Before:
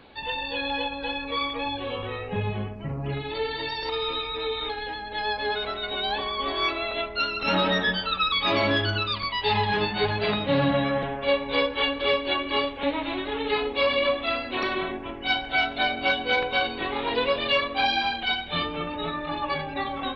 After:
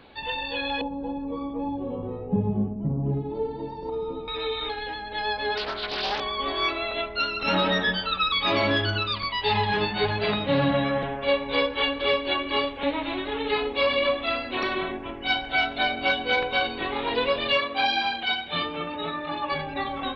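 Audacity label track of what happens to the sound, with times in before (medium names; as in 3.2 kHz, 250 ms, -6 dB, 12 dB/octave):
0.810000	4.280000	FFT filter 110 Hz 0 dB, 190 Hz +11 dB, 620 Hz -3 dB, 890 Hz -3 dB, 1.8 kHz -25 dB
5.570000	6.200000	loudspeaker Doppler distortion depth 0.45 ms
17.570000	19.520000	high-pass 170 Hz 6 dB/octave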